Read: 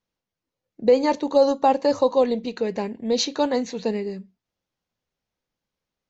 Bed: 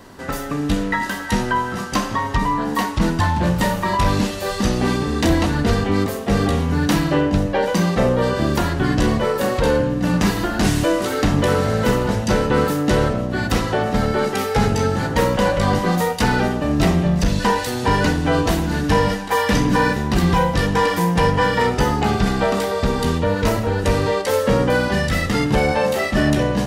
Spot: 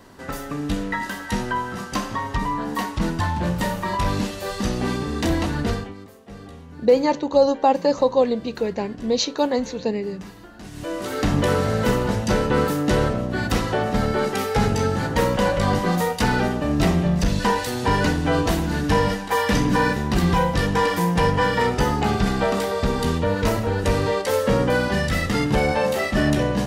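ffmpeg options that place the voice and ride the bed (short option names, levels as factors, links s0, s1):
-filter_complex "[0:a]adelay=6000,volume=1.12[s0];[1:a]volume=5.31,afade=t=out:st=5.67:d=0.27:silence=0.141254,afade=t=in:st=10.71:d=0.62:silence=0.105925[s1];[s0][s1]amix=inputs=2:normalize=0"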